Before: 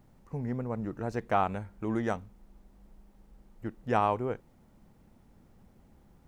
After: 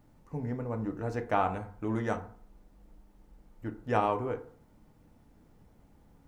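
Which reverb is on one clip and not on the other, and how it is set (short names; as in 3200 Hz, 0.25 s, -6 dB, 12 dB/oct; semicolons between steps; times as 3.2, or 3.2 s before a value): FDN reverb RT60 0.5 s, low-frequency decay 0.9×, high-frequency decay 0.45×, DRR 5 dB; gain -1.5 dB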